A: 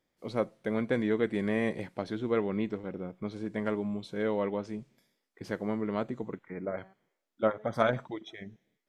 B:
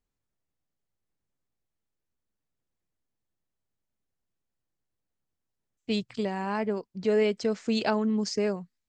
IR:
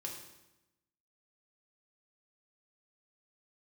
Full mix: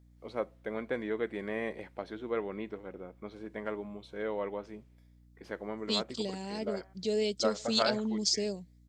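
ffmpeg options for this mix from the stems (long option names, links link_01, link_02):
-filter_complex "[0:a]bass=frequency=250:gain=-12,treble=frequency=4000:gain=-7,volume=-3dB[link_01];[1:a]firequalizer=gain_entry='entry(570,0);entry(1200,-15);entry(3600,13)':delay=0.05:min_phase=1,aeval=exprs='val(0)+0.00251*(sin(2*PI*60*n/s)+sin(2*PI*2*60*n/s)/2+sin(2*PI*3*60*n/s)/3+sin(2*PI*4*60*n/s)/4+sin(2*PI*5*60*n/s)/5)':channel_layout=same,volume=-6.5dB[link_02];[link_01][link_02]amix=inputs=2:normalize=0"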